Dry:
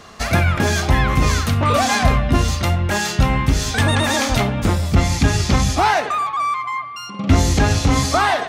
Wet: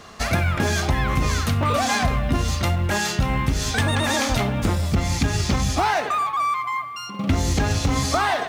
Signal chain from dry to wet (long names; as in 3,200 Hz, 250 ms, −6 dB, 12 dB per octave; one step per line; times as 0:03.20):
in parallel at −12 dB: floating-point word with a short mantissa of 2 bits
on the sum: downward compressor, threshold −13 dBFS, peak gain reduction 7 dB
level −3.5 dB